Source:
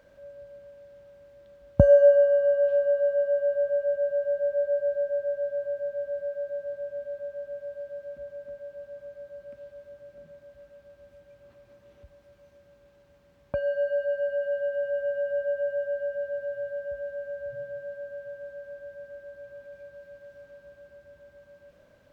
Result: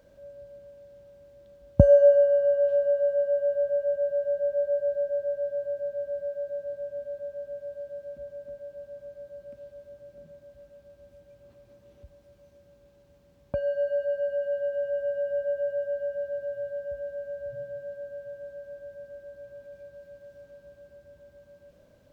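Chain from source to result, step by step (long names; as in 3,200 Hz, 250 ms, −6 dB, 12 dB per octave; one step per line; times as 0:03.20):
parametric band 1,600 Hz −8.5 dB 2.2 octaves
level +2.5 dB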